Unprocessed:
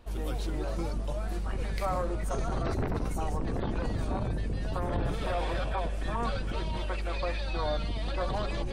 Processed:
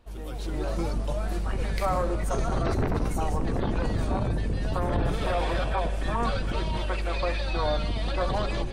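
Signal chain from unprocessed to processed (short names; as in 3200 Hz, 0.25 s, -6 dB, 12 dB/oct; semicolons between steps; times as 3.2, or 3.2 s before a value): AGC gain up to 8.5 dB; on a send: reverb RT60 1.8 s, pre-delay 35 ms, DRR 15 dB; on the sum: gain -4 dB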